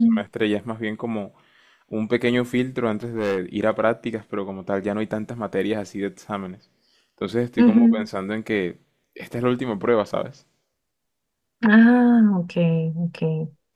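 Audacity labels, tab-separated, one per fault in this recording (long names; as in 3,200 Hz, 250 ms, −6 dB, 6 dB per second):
2.950000	3.380000	clipping −18.5 dBFS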